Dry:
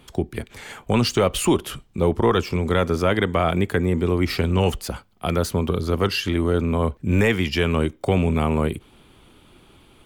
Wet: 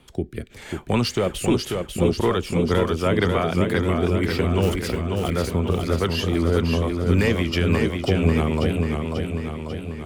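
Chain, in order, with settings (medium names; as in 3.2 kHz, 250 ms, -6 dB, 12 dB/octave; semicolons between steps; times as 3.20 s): rotary cabinet horn 0.9 Hz, later 6 Hz, at 1.77 s; 4.62–5.30 s: short-mantissa float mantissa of 2-bit; modulated delay 541 ms, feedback 60%, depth 66 cents, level -4.5 dB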